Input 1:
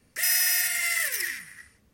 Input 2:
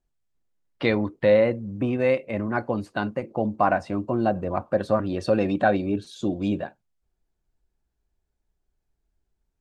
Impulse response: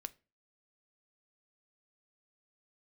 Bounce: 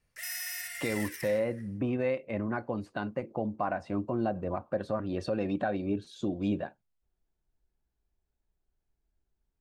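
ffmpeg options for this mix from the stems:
-filter_complex "[0:a]equalizer=frequency=280:width_type=o:width=1:gain=-14,volume=-11dB[link_01];[1:a]alimiter=limit=-16dB:level=0:latency=1:release=255,volume=-4dB[link_02];[link_01][link_02]amix=inputs=2:normalize=0,highshelf=frequency=4500:gain=-5"

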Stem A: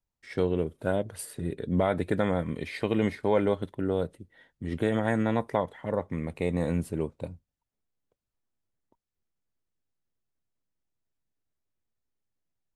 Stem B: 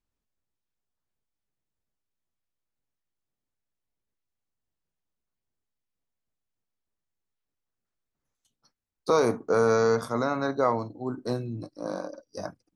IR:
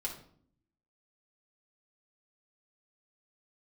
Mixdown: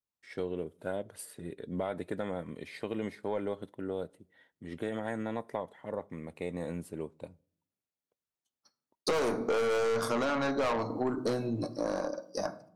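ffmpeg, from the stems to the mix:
-filter_complex "[0:a]adynamicequalizer=threshold=0.00501:dfrequency=2300:dqfactor=0.7:tfrequency=2300:tqfactor=0.7:attack=5:release=100:ratio=0.375:range=2:mode=cutabove:tftype=bell,volume=-5.5dB,asplit=2[link_01][link_02];[link_02]volume=-23dB[link_03];[1:a]agate=range=-33dB:threshold=-54dB:ratio=3:detection=peak,dynaudnorm=framelen=170:gausssize=17:maxgain=14dB,volume=2dB,asplit=2[link_04][link_05];[link_05]volume=-8.5dB[link_06];[2:a]atrim=start_sample=2205[link_07];[link_03][link_06]amix=inputs=2:normalize=0[link_08];[link_08][link_07]afir=irnorm=-1:irlink=0[link_09];[link_01][link_04][link_09]amix=inputs=3:normalize=0,highpass=frequency=270:poles=1,aeval=exprs='(tanh(6.31*val(0)+0.2)-tanh(0.2))/6.31':channel_layout=same,acompressor=threshold=-28dB:ratio=6"

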